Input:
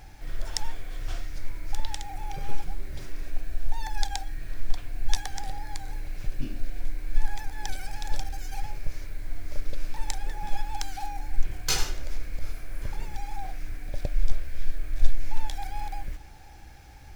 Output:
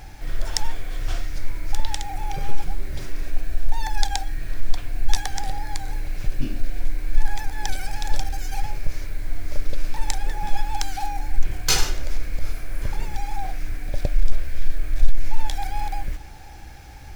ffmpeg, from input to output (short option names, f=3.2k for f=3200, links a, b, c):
-af "acontrast=74"